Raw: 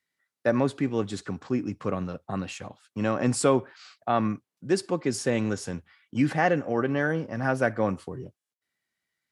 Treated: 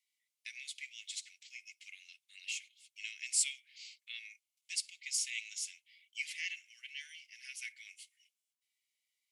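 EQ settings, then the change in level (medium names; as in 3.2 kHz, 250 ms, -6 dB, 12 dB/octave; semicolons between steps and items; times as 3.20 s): rippled Chebyshev high-pass 2.1 kHz, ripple 3 dB; +1.5 dB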